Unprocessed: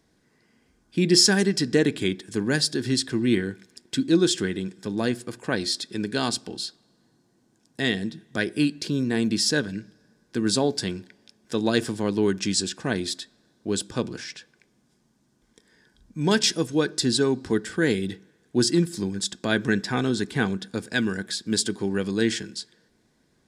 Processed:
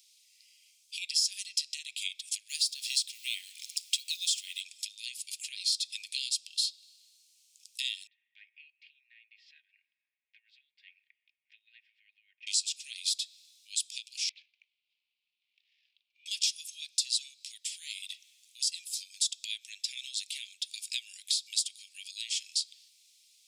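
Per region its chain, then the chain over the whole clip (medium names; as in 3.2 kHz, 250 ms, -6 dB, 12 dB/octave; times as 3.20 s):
2.49–4.61 s: companding laws mixed up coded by mu + high-pass 750 Hz 6 dB/octave
8.07–12.47 s: Chebyshev low-pass 1.9 kHz, order 4 + comb 3.2 ms, depth 45%
14.29–16.26 s: median filter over 15 samples + low-pass 3.4 kHz 24 dB/octave + compression 3:1, threshold -50 dBFS
whole clip: tilt EQ +1.5 dB/octave; compression 6:1, threshold -35 dBFS; steep high-pass 2.4 kHz 72 dB/octave; trim +8 dB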